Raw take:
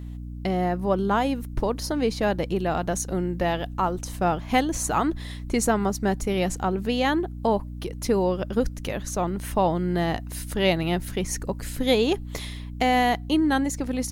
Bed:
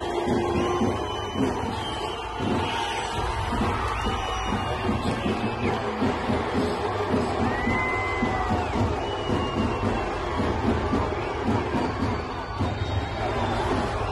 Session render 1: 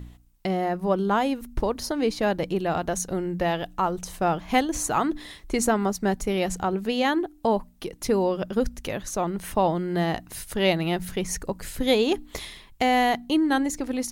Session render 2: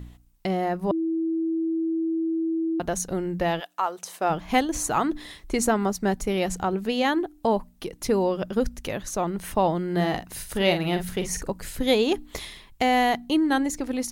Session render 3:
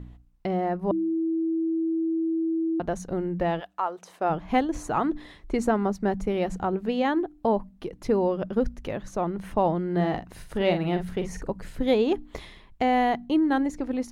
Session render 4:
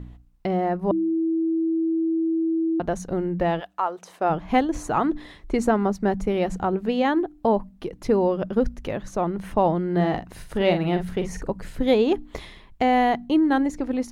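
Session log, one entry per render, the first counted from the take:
hum removal 60 Hz, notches 5
0:00.91–0:02.80: beep over 326 Hz −22.5 dBFS; 0:03.59–0:04.29: high-pass filter 920 Hz → 330 Hz; 0:09.92–0:11.52: double-tracking delay 45 ms −8 dB
low-pass filter 1,300 Hz 6 dB per octave; hum removal 64 Hz, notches 3
level +3 dB

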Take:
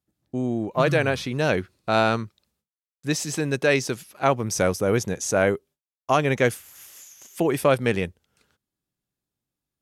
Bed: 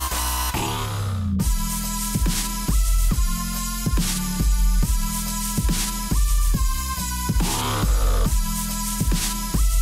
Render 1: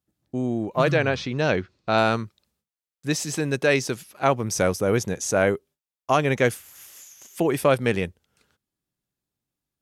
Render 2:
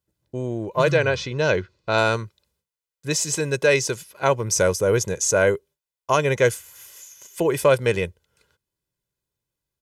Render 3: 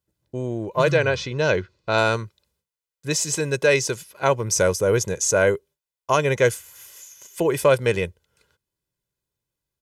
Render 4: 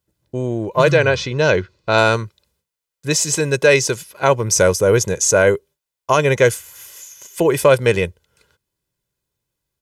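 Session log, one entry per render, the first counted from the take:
0:00.91–0:01.98: low-pass filter 6,300 Hz 24 dB per octave
dynamic equaliser 7,100 Hz, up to +7 dB, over −46 dBFS, Q 1.7; comb filter 2 ms, depth 58%
no processing that can be heard
level +5.5 dB; brickwall limiter −2 dBFS, peak gain reduction 2.5 dB

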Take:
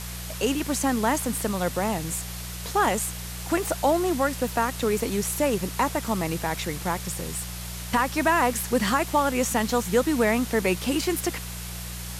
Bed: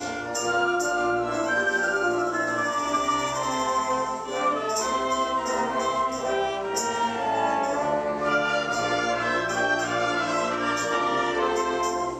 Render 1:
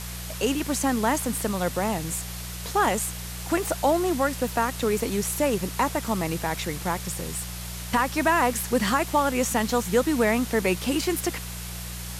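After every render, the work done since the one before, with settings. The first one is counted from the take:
no processing that can be heard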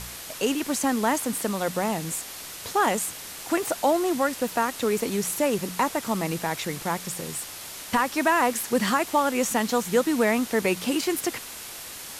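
hum removal 60 Hz, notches 3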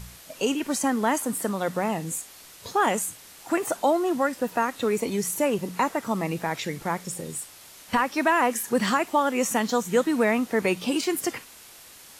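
noise reduction from a noise print 9 dB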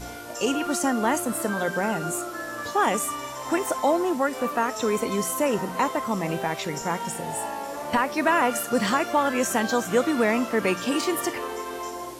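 mix in bed −8 dB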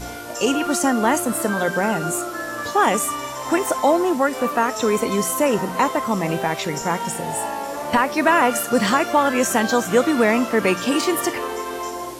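level +5 dB

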